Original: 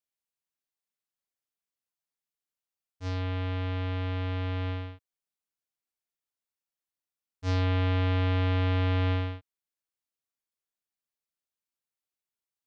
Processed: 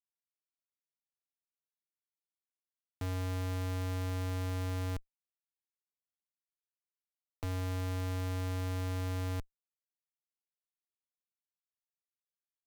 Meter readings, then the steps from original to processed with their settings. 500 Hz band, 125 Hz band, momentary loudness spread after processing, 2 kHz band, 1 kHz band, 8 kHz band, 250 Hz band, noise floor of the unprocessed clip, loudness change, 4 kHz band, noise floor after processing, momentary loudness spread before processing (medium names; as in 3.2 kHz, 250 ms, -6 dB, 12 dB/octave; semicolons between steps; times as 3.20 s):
-7.0 dB, -7.0 dB, 4 LU, -9.0 dB, -7.5 dB, no reading, -7.0 dB, under -85 dBFS, -7.5 dB, -8.5 dB, under -85 dBFS, 11 LU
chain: Schmitt trigger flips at -48 dBFS; trim -2 dB